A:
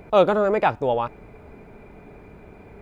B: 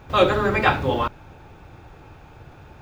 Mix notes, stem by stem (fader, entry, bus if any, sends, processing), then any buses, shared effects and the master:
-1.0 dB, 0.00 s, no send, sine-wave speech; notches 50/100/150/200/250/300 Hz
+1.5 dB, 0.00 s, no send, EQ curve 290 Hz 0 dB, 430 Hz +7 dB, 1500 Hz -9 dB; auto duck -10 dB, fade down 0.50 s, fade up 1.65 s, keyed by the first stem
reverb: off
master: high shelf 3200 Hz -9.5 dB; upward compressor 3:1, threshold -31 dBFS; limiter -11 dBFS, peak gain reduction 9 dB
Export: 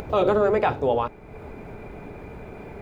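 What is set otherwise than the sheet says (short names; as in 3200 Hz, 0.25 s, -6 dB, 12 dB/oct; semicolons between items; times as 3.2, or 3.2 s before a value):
stem A: missing sine-wave speech; master: missing high shelf 3200 Hz -9.5 dB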